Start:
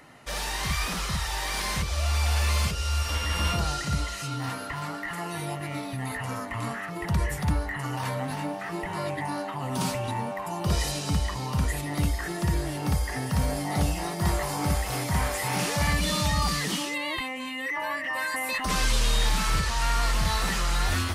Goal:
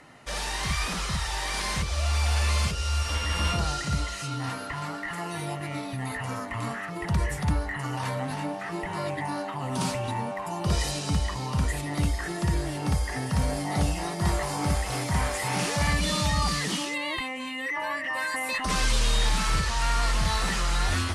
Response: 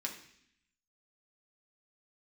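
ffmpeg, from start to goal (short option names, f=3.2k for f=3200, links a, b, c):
-af "lowpass=f=11k:w=0.5412,lowpass=f=11k:w=1.3066"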